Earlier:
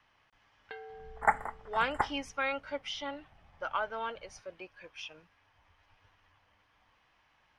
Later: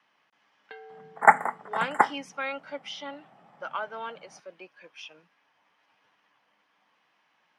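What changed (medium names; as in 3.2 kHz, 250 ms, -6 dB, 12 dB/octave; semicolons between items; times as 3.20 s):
second sound +10.0 dB; master: add steep high-pass 160 Hz 36 dB/octave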